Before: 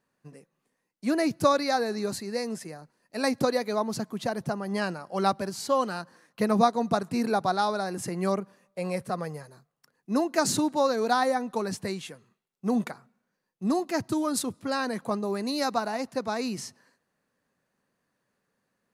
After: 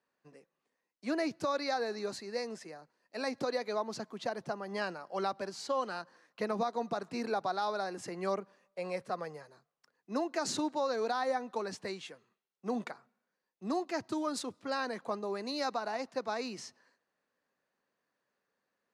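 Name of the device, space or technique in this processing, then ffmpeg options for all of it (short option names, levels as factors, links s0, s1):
DJ mixer with the lows and highs turned down: -filter_complex "[0:a]acrossover=split=290 7200:gain=0.251 1 0.112[s0][s1][s2];[s0][s1][s2]amix=inputs=3:normalize=0,alimiter=limit=0.119:level=0:latency=1:release=87,volume=0.596"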